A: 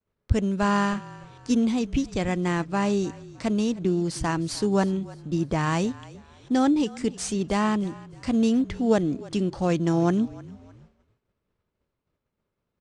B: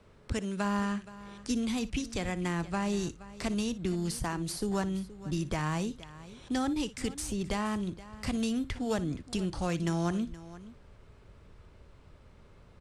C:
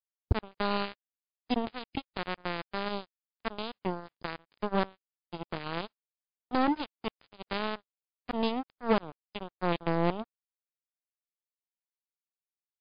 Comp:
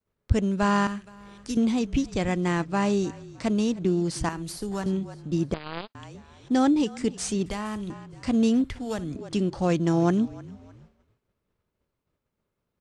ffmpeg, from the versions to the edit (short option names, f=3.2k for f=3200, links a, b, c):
-filter_complex "[1:a]asplit=4[a][b][c][d];[0:a]asplit=6[e][f][g][h][i][j];[e]atrim=end=0.872[k];[a]atrim=start=0.868:end=1.572[l];[f]atrim=start=1.568:end=4.292[m];[b]atrim=start=4.288:end=4.862[n];[g]atrim=start=4.858:end=5.542[o];[2:a]atrim=start=5.538:end=5.952[p];[h]atrim=start=5.948:end=7.462[q];[c]atrim=start=7.458:end=7.902[r];[i]atrim=start=7.898:end=8.642[s];[d]atrim=start=8.638:end=9.162[t];[j]atrim=start=9.158[u];[k][l]acrossfade=d=0.004:c1=hsin:c2=hsin[v];[v][m]acrossfade=d=0.004:c1=hsin:c2=hsin[w];[w][n]acrossfade=d=0.004:c1=hsin:c2=hsin[x];[x][o]acrossfade=d=0.004:c1=hsin:c2=hsin[y];[y][p]acrossfade=d=0.004:c1=hsin:c2=hsin[z];[z][q]acrossfade=d=0.004:c1=hsin:c2=hsin[aa];[aa][r]acrossfade=d=0.004:c1=hsin:c2=hsin[ab];[ab][s]acrossfade=d=0.004:c1=hsin:c2=hsin[ac];[ac][t]acrossfade=d=0.004:c1=hsin:c2=hsin[ad];[ad][u]acrossfade=d=0.004:c1=hsin:c2=hsin"